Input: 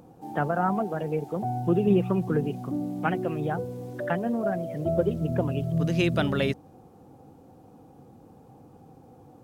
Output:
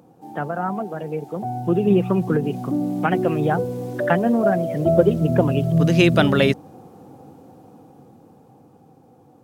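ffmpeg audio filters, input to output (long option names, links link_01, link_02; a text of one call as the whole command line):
ffmpeg -i in.wav -filter_complex "[0:a]dynaudnorm=framelen=200:gausssize=21:maxgain=11.5dB,highpass=110,asettb=1/sr,asplit=3[link_01][link_02][link_03];[link_01]atrim=end=2.354[link_04];[link_02]atrim=start=2.35:end=3.12,asetpts=PTS-STARTPTS,afade=type=in:duration=0.004:curve=qsin,afade=type=out:start_time=0.766:duration=0.004:curve=qsin,acompressor=threshold=-16dB:ratio=6[link_05];[link_03]atrim=start=3.116[link_06];[link_04][link_05]acrossfade=duration=0.004:curve1=hsin:curve2=qsin[link_07];[link_07][link_06]acrossfade=duration=0.004:curve1=qsin:curve2=hsin" out.wav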